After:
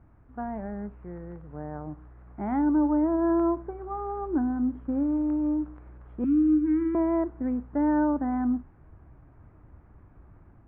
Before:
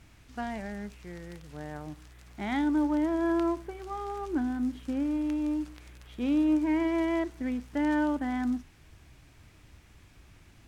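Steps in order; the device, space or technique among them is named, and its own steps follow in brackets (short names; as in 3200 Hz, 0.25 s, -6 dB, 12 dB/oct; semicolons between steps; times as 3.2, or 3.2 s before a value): 6.24–6.95 Chebyshev band-stop 320–1300 Hz, order 3; action camera in a waterproof case (LPF 1300 Hz 24 dB/oct; AGC gain up to 3.5 dB; AAC 64 kbps 16000 Hz)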